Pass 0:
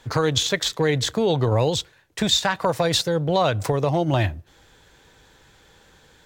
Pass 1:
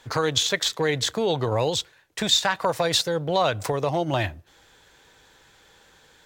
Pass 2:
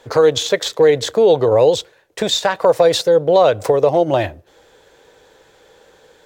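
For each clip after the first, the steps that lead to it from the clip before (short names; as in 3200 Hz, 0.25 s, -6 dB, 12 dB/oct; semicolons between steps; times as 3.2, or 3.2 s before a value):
low shelf 320 Hz -8 dB
bell 490 Hz +13.5 dB 1.2 oct; gain +1 dB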